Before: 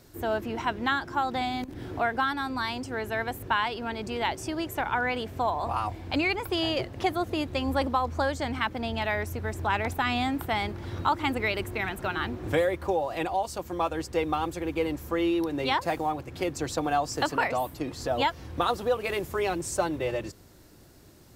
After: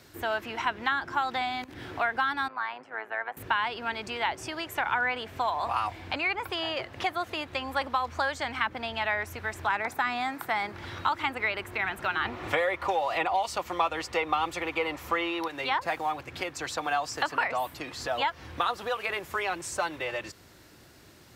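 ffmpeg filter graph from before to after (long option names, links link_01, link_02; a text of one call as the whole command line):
ffmpeg -i in.wav -filter_complex "[0:a]asettb=1/sr,asplit=3[link_01][link_02][link_03];[link_01]atrim=end=2.484[link_04];[link_02]atrim=start=2.48:end=3.37,asetpts=PTS-STARTPTS,afade=type=in:duration=0.004:curve=qsin,afade=type=out:start_time=0.886:duration=0.004:curve=qsin,acrossover=split=520 2100:gain=0.126 1 0.0708[link_05][link_06][link_07];[link_05][link_06][link_07]amix=inputs=3:normalize=0,tremolo=f=110:d=0.71,highpass=frequency=130:width=0.5412,highpass=frequency=130:width=1.3066[link_08];[link_03]atrim=start=3.366[link_09];[link_04][link_08]acrossfade=duration=0.004:curve1=hsin:curve2=qsin[link_10];[link_10][link_09]acrossfade=duration=0.004:curve1=qsin:curve2=hsin,asettb=1/sr,asplit=3[link_11][link_12][link_13];[link_11]atrim=end=9.694[link_14];[link_12]atrim=start=9.69:end=10.73,asetpts=PTS-STARTPTS,afade=type=in:duration=0.004:curve=qsin,afade=type=out:start_time=1.036:duration=0.004:curve=qsin,highpass=frequency=120:width=0.5412,highpass=frequency=120:width=1.3066,equalizer=frequency=3000:width_type=o:width=0.54:gain=-9[link_15];[link_13]atrim=start=10.726[link_16];[link_14][link_15]acrossfade=duration=0.004:curve1=hsin:curve2=qsin[link_17];[link_17][link_16]acrossfade=duration=0.004:curve1=qsin:curve2=hsin,asettb=1/sr,asplit=3[link_18][link_19][link_20];[link_18]atrim=end=12.254[link_21];[link_19]atrim=start=12.25:end=15.48,asetpts=PTS-STARTPTS,afade=type=in:duration=0.004:curve=qsin,afade=type=out:start_time=3.226:duration=0.004:curve=qsin,bandreject=frequency=1600:width=7.6,acontrast=88,highshelf=frequency=4700:gain=-7.5[link_22];[link_20]atrim=start=15.476[link_23];[link_21][link_22]acrossfade=duration=0.004:curve1=hsin:curve2=qsin[link_24];[link_24][link_23]acrossfade=duration=0.004:curve1=qsin:curve2=hsin,highpass=53,equalizer=frequency=2200:width=0.46:gain=9,acrossover=split=640|1700[link_25][link_26][link_27];[link_25]acompressor=threshold=-39dB:ratio=4[link_28];[link_26]acompressor=threshold=-24dB:ratio=4[link_29];[link_27]acompressor=threshold=-33dB:ratio=4[link_30];[link_28][link_29][link_30]amix=inputs=3:normalize=0,volume=-2dB" out.wav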